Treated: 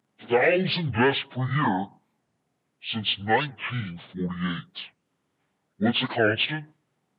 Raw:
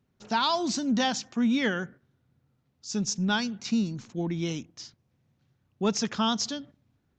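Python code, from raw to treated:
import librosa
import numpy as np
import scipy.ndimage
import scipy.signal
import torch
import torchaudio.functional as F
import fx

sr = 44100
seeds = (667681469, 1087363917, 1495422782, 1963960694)

y = fx.pitch_bins(x, sr, semitones=-11.0)
y = scipy.signal.sosfilt(scipy.signal.butter(4, 170.0, 'highpass', fs=sr, output='sos'), y)
y = fx.record_warp(y, sr, rpm=45.0, depth_cents=250.0)
y = y * librosa.db_to_amplitude(7.5)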